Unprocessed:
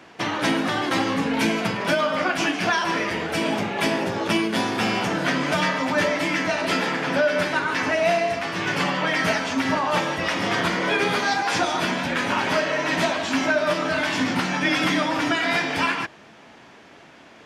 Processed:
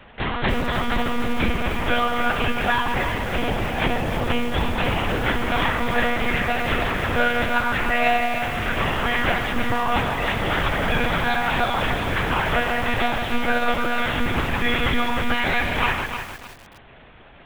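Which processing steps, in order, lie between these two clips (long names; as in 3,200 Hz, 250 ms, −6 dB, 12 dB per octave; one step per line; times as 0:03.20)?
one-pitch LPC vocoder at 8 kHz 240 Hz
feedback echo at a low word length 305 ms, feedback 35%, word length 6 bits, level −7.5 dB
level +1 dB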